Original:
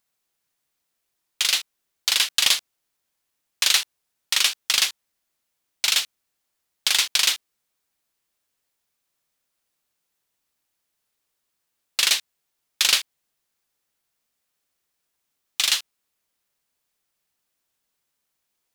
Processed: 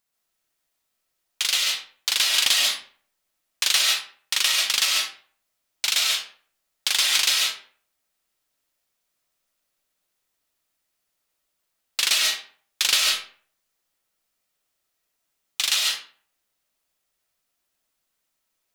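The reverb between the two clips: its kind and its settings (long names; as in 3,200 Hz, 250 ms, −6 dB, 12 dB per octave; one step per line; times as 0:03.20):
comb and all-pass reverb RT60 0.48 s, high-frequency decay 0.7×, pre-delay 100 ms, DRR −1.5 dB
level −2.5 dB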